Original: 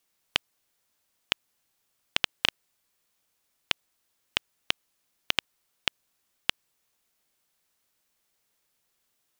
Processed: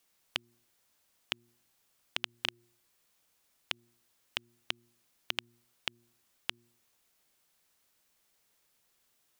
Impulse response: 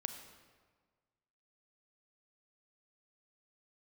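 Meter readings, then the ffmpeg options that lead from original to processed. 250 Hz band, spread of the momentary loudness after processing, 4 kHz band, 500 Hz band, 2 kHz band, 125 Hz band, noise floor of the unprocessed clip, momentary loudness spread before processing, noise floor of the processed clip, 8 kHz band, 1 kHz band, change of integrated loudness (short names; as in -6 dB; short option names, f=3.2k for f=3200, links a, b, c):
-8.5 dB, 3 LU, -8.5 dB, -8.5 dB, -8.5 dB, -8.5 dB, -76 dBFS, 3 LU, -74 dBFS, -8.5 dB, -8.5 dB, -8.5 dB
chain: -af "bandreject=f=118:t=h:w=4,bandreject=f=236:t=h:w=4,bandreject=f=354:t=h:w=4,alimiter=limit=-12dB:level=0:latency=1:release=172,volume=2dB"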